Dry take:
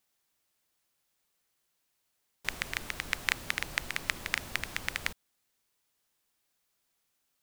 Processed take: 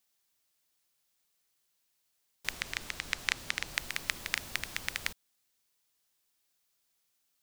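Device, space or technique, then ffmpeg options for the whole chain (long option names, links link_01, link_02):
presence and air boost: -filter_complex "[0:a]equalizer=frequency=4800:width_type=o:width=1.9:gain=4.5,highshelf=frequency=10000:gain=6.5,asettb=1/sr,asplit=3[link_01][link_02][link_03];[link_01]atrim=end=2.514[link_04];[link_02]atrim=start=2.51:end=3.74,asetpts=PTS-STARTPTS,afade=type=in:duration=0.004:curve=qsin,afade=type=out:start_time=1.226:duration=0.004:curve=qsin,acrossover=split=9300[link_05][link_06];[link_06]acompressor=threshold=-47dB:ratio=4:attack=1:release=60[link_07];[link_05][link_07]amix=inputs=2:normalize=0[link_08];[link_03]atrim=start=3.736[link_09];[link_04][link_08]acrossfade=duration=0.004:curve1=hsin:curve2=qsin[link_10];[link_10][link_09]acrossfade=duration=0.004:curve1=qsin:curve2=hsin,volume=-4dB"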